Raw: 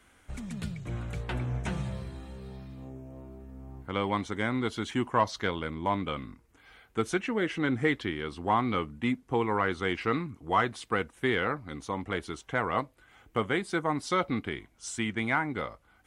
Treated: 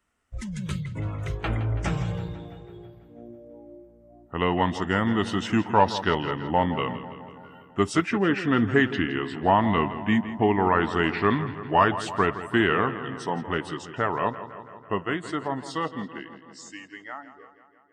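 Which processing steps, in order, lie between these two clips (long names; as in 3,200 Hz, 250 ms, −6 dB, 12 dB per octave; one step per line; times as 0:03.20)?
fade-out on the ending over 4.60 s
change of speed 0.896×
noise reduction from a noise print of the clip's start 20 dB
feedback echo with a low-pass in the loop 165 ms, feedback 67%, low-pass 4,800 Hz, level −13 dB
level +6 dB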